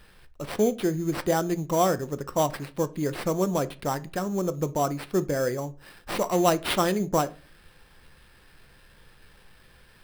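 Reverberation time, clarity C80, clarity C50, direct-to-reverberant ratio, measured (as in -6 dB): no single decay rate, 27.0 dB, 20.5 dB, 12.0 dB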